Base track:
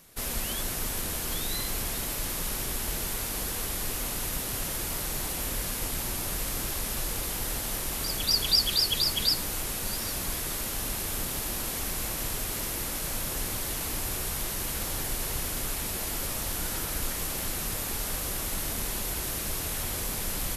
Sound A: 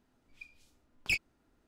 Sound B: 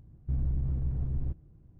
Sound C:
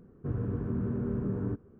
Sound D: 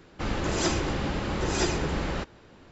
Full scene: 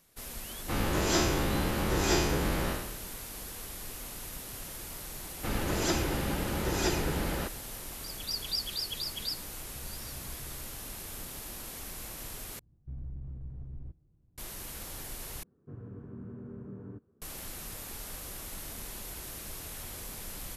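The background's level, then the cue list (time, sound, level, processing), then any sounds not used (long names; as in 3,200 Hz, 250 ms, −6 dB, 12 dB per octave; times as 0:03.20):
base track −10 dB
0:00.49: mix in D −3 dB + peak hold with a decay on every bin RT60 0.79 s
0:05.24: mix in D −3 dB + notch filter 1,100 Hz, Q 17
0:09.47: mix in B −7 dB + downward compressor, threshold −40 dBFS
0:12.59: overwrite with B −11.5 dB
0:15.43: overwrite with C −12 dB + high-pass filter 75 Hz
not used: A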